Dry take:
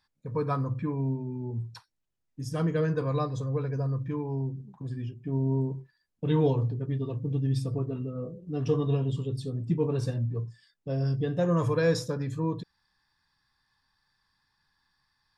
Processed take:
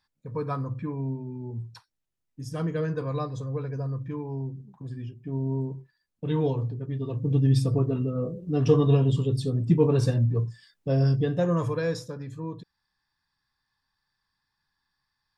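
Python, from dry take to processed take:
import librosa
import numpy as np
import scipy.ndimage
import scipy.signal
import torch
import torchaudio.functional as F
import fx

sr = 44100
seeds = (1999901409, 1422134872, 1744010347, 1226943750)

y = fx.gain(x, sr, db=fx.line((6.92, -1.5), (7.37, 6.5), (11.01, 6.5), (12.04, -5.5)))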